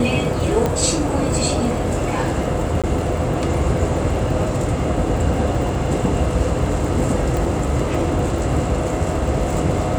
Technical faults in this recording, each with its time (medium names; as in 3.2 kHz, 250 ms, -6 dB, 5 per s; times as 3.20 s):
crackle 42 per s -27 dBFS
0.66 s: pop -7 dBFS
2.82–2.84 s: dropout 16 ms
7.37 s: pop